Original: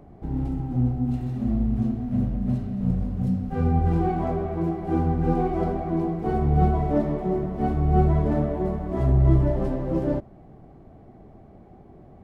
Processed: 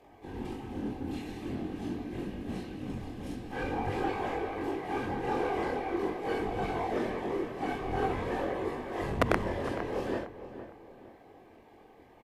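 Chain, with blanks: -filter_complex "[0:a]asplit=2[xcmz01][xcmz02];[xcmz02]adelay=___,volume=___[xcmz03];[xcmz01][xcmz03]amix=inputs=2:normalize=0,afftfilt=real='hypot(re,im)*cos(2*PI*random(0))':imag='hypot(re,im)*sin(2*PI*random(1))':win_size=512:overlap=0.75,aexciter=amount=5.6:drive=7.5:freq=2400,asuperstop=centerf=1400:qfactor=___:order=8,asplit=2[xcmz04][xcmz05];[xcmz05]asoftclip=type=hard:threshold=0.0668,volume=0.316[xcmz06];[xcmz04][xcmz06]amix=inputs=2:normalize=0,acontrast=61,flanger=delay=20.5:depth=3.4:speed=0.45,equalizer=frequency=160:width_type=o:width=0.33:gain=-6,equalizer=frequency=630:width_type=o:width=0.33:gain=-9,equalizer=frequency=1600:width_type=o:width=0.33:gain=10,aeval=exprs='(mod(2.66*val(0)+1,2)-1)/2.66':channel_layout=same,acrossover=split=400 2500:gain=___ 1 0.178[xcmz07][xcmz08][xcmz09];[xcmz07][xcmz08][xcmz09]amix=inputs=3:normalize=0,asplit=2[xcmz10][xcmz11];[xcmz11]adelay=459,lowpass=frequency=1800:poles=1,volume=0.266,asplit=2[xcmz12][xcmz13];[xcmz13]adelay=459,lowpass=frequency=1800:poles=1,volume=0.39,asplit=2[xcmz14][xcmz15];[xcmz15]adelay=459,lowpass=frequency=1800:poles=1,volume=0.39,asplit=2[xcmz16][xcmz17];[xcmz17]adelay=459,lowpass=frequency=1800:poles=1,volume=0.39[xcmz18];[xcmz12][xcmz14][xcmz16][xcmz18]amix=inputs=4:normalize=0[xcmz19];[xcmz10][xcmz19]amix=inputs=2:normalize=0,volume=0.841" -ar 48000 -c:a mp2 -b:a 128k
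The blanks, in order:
45, 0.708, 7.7, 0.158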